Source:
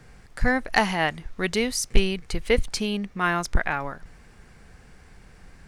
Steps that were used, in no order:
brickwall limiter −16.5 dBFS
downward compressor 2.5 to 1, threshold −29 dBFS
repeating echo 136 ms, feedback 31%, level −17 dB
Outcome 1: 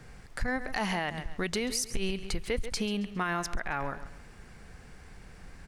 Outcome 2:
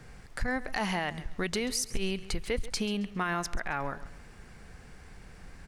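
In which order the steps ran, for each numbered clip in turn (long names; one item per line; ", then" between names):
repeating echo, then brickwall limiter, then downward compressor
brickwall limiter, then downward compressor, then repeating echo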